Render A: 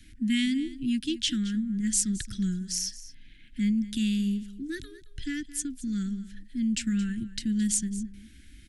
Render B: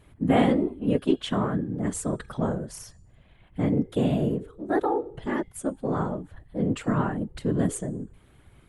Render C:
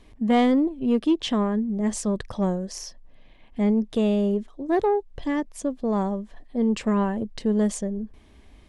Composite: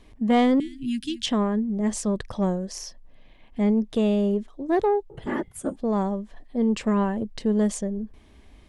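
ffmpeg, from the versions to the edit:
-filter_complex "[2:a]asplit=3[a][b][c];[a]atrim=end=0.602[d];[0:a]atrim=start=0.598:end=1.262[e];[b]atrim=start=1.258:end=5.102[f];[1:a]atrim=start=5.098:end=5.762[g];[c]atrim=start=5.758[h];[d][e]acrossfade=d=0.004:c1=hsin:c2=hsin[i];[i][f]acrossfade=d=0.004:c1=hsin:c2=hsin[j];[j][g]acrossfade=d=0.004:c1=hsin:c2=hsin[k];[k][h]acrossfade=d=0.004:c1=hsin:c2=hsin"

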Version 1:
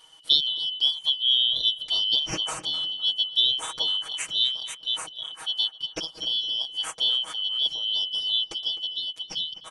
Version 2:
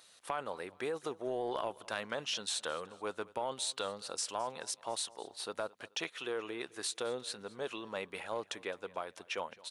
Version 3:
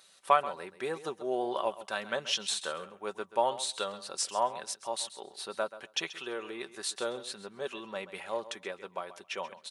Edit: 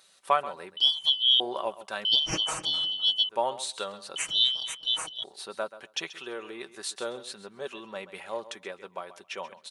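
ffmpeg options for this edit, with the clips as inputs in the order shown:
-filter_complex "[0:a]asplit=3[a][b][c];[2:a]asplit=4[d][e][f][g];[d]atrim=end=0.772[h];[a]atrim=start=0.768:end=1.402[i];[e]atrim=start=1.398:end=2.052[j];[b]atrim=start=2.048:end=3.292[k];[f]atrim=start=3.288:end=4.162[l];[c]atrim=start=4.158:end=5.242[m];[g]atrim=start=5.238[n];[h][i]acrossfade=d=0.004:c1=hsin:c2=hsin[o];[o][j]acrossfade=d=0.004:c1=hsin:c2=hsin[p];[p][k]acrossfade=d=0.004:c1=hsin:c2=hsin[q];[q][l]acrossfade=d=0.004:c1=hsin:c2=hsin[r];[r][m]acrossfade=d=0.004:c1=hsin:c2=hsin[s];[s][n]acrossfade=d=0.004:c1=hsin:c2=hsin"

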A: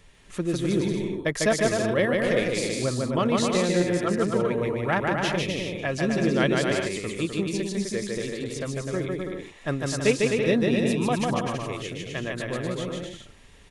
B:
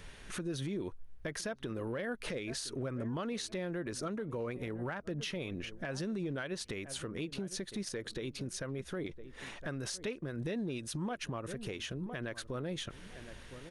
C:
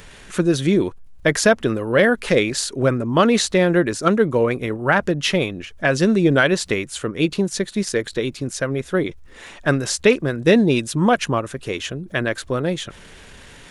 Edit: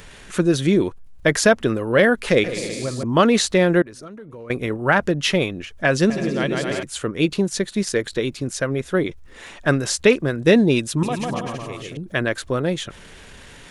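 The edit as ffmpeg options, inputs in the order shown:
-filter_complex "[0:a]asplit=3[a][b][c];[2:a]asplit=5[d][e][f][g][h];[d]atrim=end=2.442[i];[a]atrim=start=2.438:end=3.032[j];[e]atrim=start=3.028:end=3.822[k];[1:a]atrim=start=3.818:end=4.502[l];[f]atrim=start=4.498:end=6.102[m];[b]atrim=start=6.098:end=6.832[n];[g]atrim=start=6.828:end=11.032[o];[c]atrim=start=11.028:end=11.972[p];[h]atrim=start=11.968[q];[i][j]acrossfade=d=0.004:c1=hsin:c2=hsin[r];[r][k]acrossfade=d=0.004:c1=hsin:c2=hsin[s];[s][l]acrossfade=d=0.004:c1=hsin:c2=hsin[t];[t][m]acrossfade=d=0.004:c1=hsin:c2=hsin[u];[u][n]acrossfade=d=0.004:c1=hsin:c2=hsin[v];[v][o]acrossfade=d=0.004:c1=hsin:c2=hsin[w];[w][p]acrossfade=d=0.004:c1=hsin:c2=hsin[x];[x][q]acrossfade=d=0.004:c1=hsin:c2=hsin"

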